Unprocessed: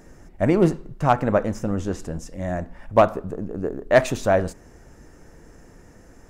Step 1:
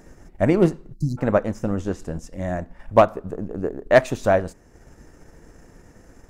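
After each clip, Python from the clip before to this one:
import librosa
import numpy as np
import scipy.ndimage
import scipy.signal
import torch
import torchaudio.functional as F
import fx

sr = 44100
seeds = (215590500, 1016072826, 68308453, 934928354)

y = fx.spec_erase(x, sr, start_s=0.93, length_s=0.25, low_hz=360.0, high_hz=3900.0)
y = fx.transient(y, sr, attack_db=2, sustain_db=-5)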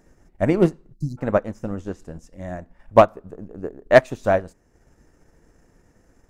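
y = fx.upward_expand(x, sr, threshold_db=-31.0, expansion=1.5)
y = y * librosa.db_to_amplitude(2.5)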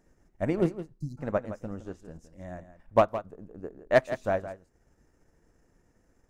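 y = x + 10.0 ** (-12.5 / 20.0) * np.pad(x, (int(165 * sr / 1000.0), 0))[:len(x)]
y = y * librosa.db_to_amplitude(-9.0)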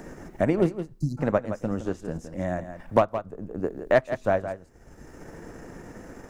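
y = fx.band_squash(x, sr, depth_pct=70)
y = y * librosa.db_to_amplitude(5.0)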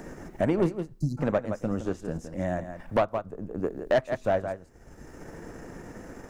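y = 10.0 ** (-15.0 / 20.0) * np.tanh(x / 10.0 ** (-15.0 / 20.0))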